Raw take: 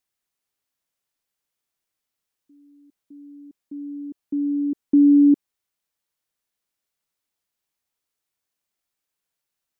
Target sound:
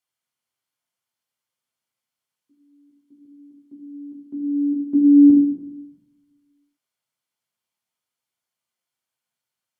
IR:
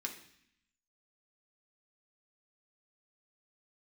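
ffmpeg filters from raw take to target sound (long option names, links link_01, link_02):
-filter_complex "[0:a]highpass=110,asettb=1/sr,asplit=3[link_01][link_02][link_03];[link_01]atrim=end=3.254[link_04];[link_02]atrim=start=3.25:end=5.3,asetpts=PTS-STARTPTS,afade=type=in:duration=0.004:curve=qsin,afade=type=out:start_time=2.046:duration=0.004:curve=qsin,adynamicequalizer=threshold=0.0398:dfrequency=290:dqfactor=5.9:tfrequency=290:tqfactor=5.9:attack=5:release=100:ratio=0.375:range=3.5:mode=boostabove:tftype=bell[link_05];[link_03]atrim=start=5.296[link_06];[link_04][link_05]acrossfade=duration=0.004:curve1=hsin:curve2=qsin[link_07];[link_07][link_06]acrossfade=duration=0.004:curve1=qsin:curve2=hsin[link_08];[1:a]atrim=start_sample=2205,asetrate=25578,aresample=44100[link_09];[link_08][link_09]afir=irnorm=-1:irlink=0,volume=-3.5dB"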